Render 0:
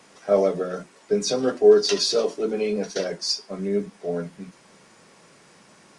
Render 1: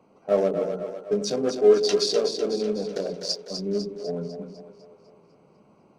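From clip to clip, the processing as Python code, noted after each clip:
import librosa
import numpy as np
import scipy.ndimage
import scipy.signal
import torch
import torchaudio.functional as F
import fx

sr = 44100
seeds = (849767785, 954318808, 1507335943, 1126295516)

y = fx.wiener(x, sr, points=25)
y = fx.echo_split(y, sr, split_hz=420.0, low_ms=97, high_ms=250, feedback_pct=52, wet_db=-7.0)
y = y * 10.0 ** (-2.0 / 20.0)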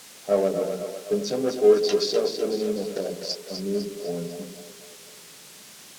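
y = fx.dmg_noise_colour(x, sr, seeds[0], colour='blue', level_db=-37.0)
y = fx.air_absorb(y, sr, metres=55.0)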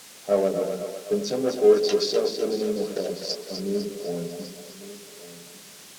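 y = x + 10.0 ** (-16.0 / 20.0) * np.pad(x, (int(1150 * sr / 1000.0), 0))[:len(x)]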